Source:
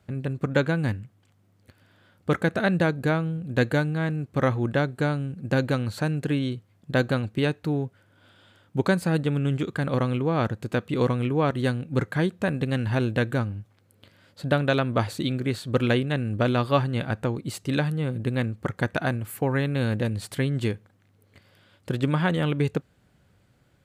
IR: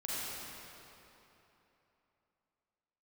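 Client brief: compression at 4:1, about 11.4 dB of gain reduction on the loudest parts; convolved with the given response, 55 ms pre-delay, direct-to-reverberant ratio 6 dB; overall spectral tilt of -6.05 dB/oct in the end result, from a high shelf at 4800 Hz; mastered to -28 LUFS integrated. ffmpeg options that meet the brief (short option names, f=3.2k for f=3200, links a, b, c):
-filter_complex "[0:a]highshelf=f=4.8k:g=4.5,acompressor=threshold=-31dB:ratio=4,asplit=2[a][b];[1:a]atrim=start_sample=2205,adelay=55[c];[b][c]afir=irnorm=-1:irlink=0,volume=-10dB[d];[a][d]amix=inputs=2:normalize=0,volume=6dB"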